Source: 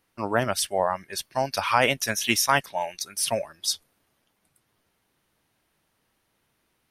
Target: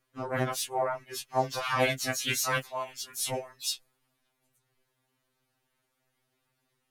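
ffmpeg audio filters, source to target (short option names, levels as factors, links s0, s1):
-filter_complex "[0:a]asplit=4[s0][s1][s2][s3];[s1]asetrate=33038,aresample=44100,atempo=1.33484,volume=0.501[s4];[s2]asetrate=52444,aresample=44100,atempo=0.840896,volume=0.631[s5];[s3]asetrate=66075,aresample=44100,atempo=0.66742,volume=0.126[s6];[s0][s4][s5][s6]amix=inputs=4:normalize=0,afftfilt=real='re*2.45*eq(mod(b,6),0)':imag='im*2.45*eq(mod(b,6),0)':win_size=2048:overlap=0.75,volume=0.531"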